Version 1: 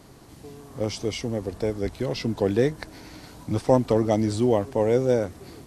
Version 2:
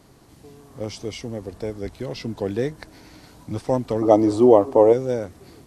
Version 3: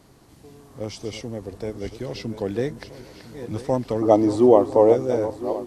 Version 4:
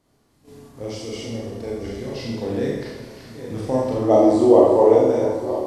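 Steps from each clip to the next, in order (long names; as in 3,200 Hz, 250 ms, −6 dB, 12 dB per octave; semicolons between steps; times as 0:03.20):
gain on a spectral selection 0:04.02–0:04.93, 240–1,300 Hz +12 dB; level −3 dB
feedback delay that plays each chunk backwards 503 ms, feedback 60%, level −11.5 dB; level −1 dB
four-comb reverb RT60 1 s, combs from 27 ms, DRR −4.5 dB; noise gate −41 dBFS, range −11 dB; level −3.5 dB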